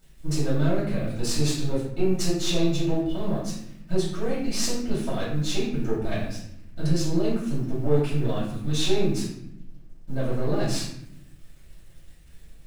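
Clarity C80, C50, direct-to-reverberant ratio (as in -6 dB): 6.0 dB, 2.5 dB, -9.0 dB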